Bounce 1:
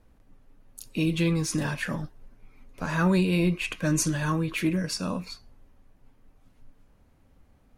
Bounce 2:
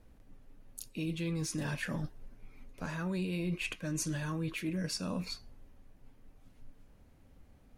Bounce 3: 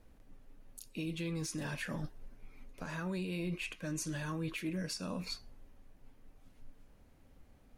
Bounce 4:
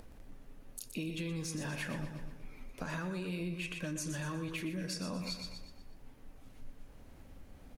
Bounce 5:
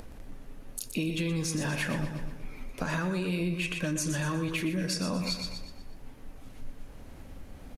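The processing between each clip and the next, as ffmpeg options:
-af "equalizer=f=1.1k:t=o:w=1:g=-3.5,areverse,acompressor=threshold=-33dB:ratio=6,areverse"
-af "equalizer=f=99:w=0.52:g=-3.5,alimiter=level_in=5.5dB:limit=-24dB:level=0:latency=1:release=101,volume=-5.5dB"
-af "acompressor=mode=upward:threshold=-54dB:ratio=2.5,aecho=1:1:121|242|363|484|605:0.398|0.163|0.0669|0.0274|0.0112,acompressor=threshold=-41dB:ratio=6,volume=5.5dB"
-af "aresample=32000,aresample=44100,volume=8dB"

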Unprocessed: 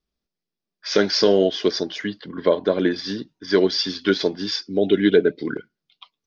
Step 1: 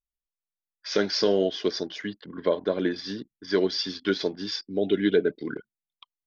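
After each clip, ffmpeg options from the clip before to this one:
-af "anlmdn=0.251,volume=-6dB"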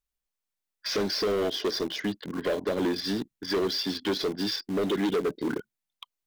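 -filter_complex "[0:a]acrossover=split=670|3700[a][b][c];[a]acompressor=threshold=-23dB:ratio=4[d];[b]acompressor=threshold=-41dB:ratio=4[e];[c]acompressor=threshold=-39dB:ratio=4[f];[d][e][f]amix=inputs=3:normalize=0,asplit=2[g][h];[h]acrusher=bits=5:mix=0:aa=0.000001,volume=-10dB[i];[g][i]amix=inputs=2:normalize=0,asoftclip=type=tanh:threshold=-27.5dB,volume=5dB"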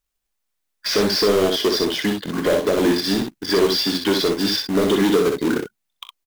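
-filter_complex "[0:a]acrusher=bits=3:mode=log:mix=0:aa=0.000001,asplit=2[a][b];[b]aecho=0:1:24|41|63:0.2|0.178|0.562[c];[a][c]amix=inputs=2:normalize=0,volume=7.5dB"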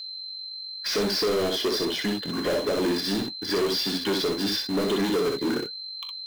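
-af "aeval=exprs='val(0)+0.0316*sin(2*PI*4100*n/s)':c=same,flanger=delay=4.1:depth=5.6:regen=-59:speed=1:shape=triangular,asoftclip=type=tanh:threshold=-19.5dB"

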